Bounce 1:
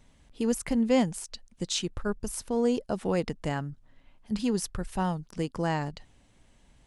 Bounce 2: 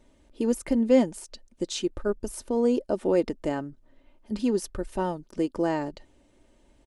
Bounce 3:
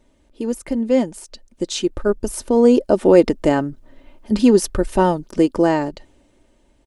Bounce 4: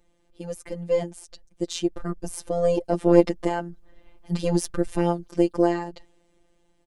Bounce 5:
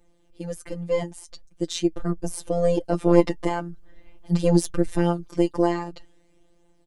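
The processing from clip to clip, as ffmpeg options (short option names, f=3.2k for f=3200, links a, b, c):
-af "equalizer=f=420:w=1.1:g=12,aecho=1:1:3.3:0.46,volume=-4dB"
-af "dynaudnorm=f=280:g=11:m=13.5dB,volume=1.5dB"
-af "aeval=exprs='0.891*(cos(1*acos(clip(val(0)/0.891,-1,1)))-cos(1*PI/2))+0.178*(cos(2*acos(clip(val(0)/0.891,-1,1)))-cos(2*PI/2))':c=same,afftfilt=real='hypot(re,im)*cos(PI*b)':imag='0':win_size=1024:overlap=0.75,volume=-3.5dB"
-af "flanger=delay=5.9:depth=1:regen=50:speed=0.45:shape=triangular,volume=5.5dB"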